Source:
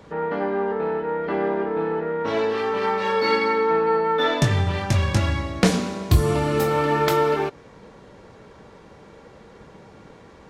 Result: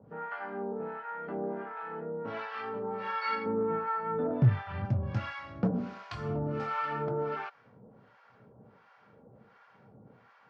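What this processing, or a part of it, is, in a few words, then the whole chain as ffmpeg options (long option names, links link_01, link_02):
guitar amplifier with harmonic tremolo: -filter_complex "[0:a]asettb=1/sr,asplit=3[link_01][link_02][link_03];[link_01]atrim=end=3.464[link_04];[link_02]atrim=start=3.46:end=4.85,asetpts=PTS-STARTPTS,afade=type=in:duration=0.004:curve=qsin,afade=type=out:start_time=1.386:duration=0.004:curve=qsin,aemphasis=mode=reproduction:type=riaa[link_05];[link_03]atrim=start=4.846[link_06];[link_04][link_05]acrossfade=duration=0.004:curve1=hsin:curve2=qsin[link_07];[link_07][link_06]acrossfade=duration=0.004:curve1=qsin:curve2=hsin,acrossover=split=760[link_08][link_09];[link_08]aeval=exprs='val(0)*(1-1/2+1/2*cos(2*PI*1.4*n/s))':channel_layout=same[link_10];[link_09]aeval=exprs='val(0)*(1-1/2-1/2*cos(2*PI*1.4*n/s))':channel_layout=same[link_11];[link_10][link_11]amix=inputs=2:normalize=0,asoftclip=type=tanh:threshold=-11.5dB,highpass=99,equalizer=frequency=120:width_type=q:width=4:gain=10,equalizer=frequency=230:width_type=q:width=4:gain=5,equalizer=frequency=340:width_type=q:width=4:gain=-5,equalizer=frequency=750:width_type=q:width=4:gain=4,equalizer=frequency=1400:width_type=q:width=4:gain=8,equalizer=frequency=3800:width_type=q:width=4:gain=-8,lowpass=frequency=4500:width=0.5412,lowpass=frequency=4500:width=1.3066,volume=-9dB"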